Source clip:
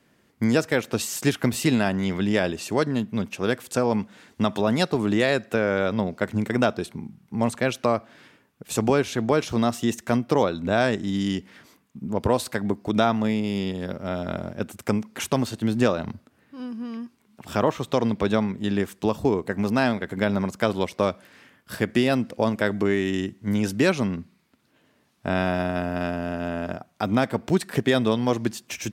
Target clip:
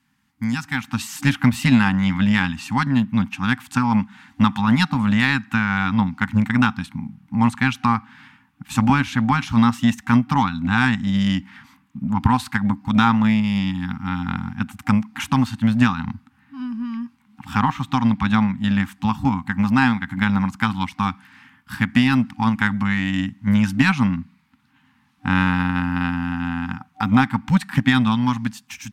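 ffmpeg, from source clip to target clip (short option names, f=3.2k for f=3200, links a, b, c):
-filter_complex "[0:a]afftfilt=real='re*(1-between(b*sr/4096,280,760))':imag='im*(1-between(b*sr/4096,280,760))':win_size=4096:overlap=0.75,acrossover=split=3200[a][b];[a]dynaudnorm=f=350:g=5:m=15dB[c];[c][b]amix=inputs=2:normalize=0,aeval=exprs='0.944*(cos(1*acos(clip(val(0)/0.944,-1,1)))-cos(1*PI/2))+0.0531*(cos(3*acos(clip(val(0)/0.944,-1,1)))-cos(3*PI/2))+0.00531*(cos(6*acos(clip(val(0)/0.944,-1,1)))-cos(6*PI/2))+0.0168*(cos(7*acos(clip(val(0)/0.944,-1,1)))-cos(7*PI/2))':c=same,volume=-1dB"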